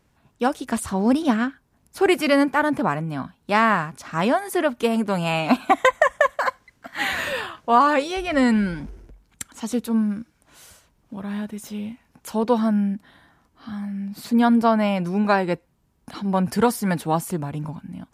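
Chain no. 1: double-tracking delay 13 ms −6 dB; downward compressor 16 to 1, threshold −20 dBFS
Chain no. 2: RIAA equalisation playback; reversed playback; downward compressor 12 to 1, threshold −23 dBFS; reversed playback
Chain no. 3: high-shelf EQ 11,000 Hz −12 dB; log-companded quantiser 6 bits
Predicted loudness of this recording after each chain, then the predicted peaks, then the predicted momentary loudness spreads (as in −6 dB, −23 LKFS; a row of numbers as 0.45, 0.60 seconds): −27.0, −28.0, −22.0 LKFS; −10.5, −13.0, −4.5 dBFS; 11, 7, 15 LU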